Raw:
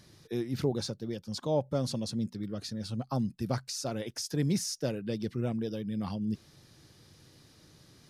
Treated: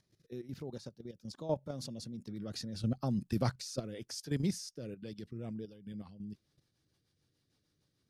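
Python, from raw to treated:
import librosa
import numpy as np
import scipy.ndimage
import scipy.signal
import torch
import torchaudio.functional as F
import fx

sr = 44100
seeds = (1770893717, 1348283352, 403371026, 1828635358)

y = fx.doppler_pass(x, sr, speed_mps=11, closest_m=6.0, pass_at_s=3.13)
y = fx.level_steps(y, sr, step_db=12)
y = fx.rotary_switch(y, sr, hz=1.1, then_hz=6.7, switch_at_s=5.0)
y = y * 10.0 ** (7.5 / 20.0)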